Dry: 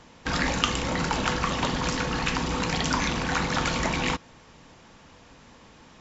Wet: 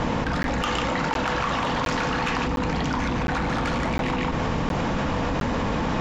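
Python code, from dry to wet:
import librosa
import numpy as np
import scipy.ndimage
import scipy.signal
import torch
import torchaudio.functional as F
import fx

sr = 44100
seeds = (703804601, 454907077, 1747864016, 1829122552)

y = fx.lowpass(x, sr, hz=1200.0, slope=6)
y = fx.notch(y, sr, hz=380.0, q=12.0)
y = y + 10.0 ** (-7.0 / 20.0) * np.pad(y, (int(147 * sr / 1000.0), 0))[:len(y)]
y = y * (1.0 - 0.55 / 2.0 + 0.55 / 2.0 * np.cos(2.0 * np.pi * 0.54 * (np.arange(len(y)) / sr)))
y = fx.low_shelf(y, sr, hz=450.0, db=-9.5, at=(0.62, 2.46))
y = 10.0 ** (-26.5 / 20.0) * np.tanh(y / 10.0 ** (-26.5 / 20.0))
y = fx.buffer_crackle(y, sr, first_s=0.43, period_s=0.71, block=512, kind='zero')
y = fx.env_flatten(y, sr, amount_pct=100)
y = y * librosa.db_to_amplitude(5.5)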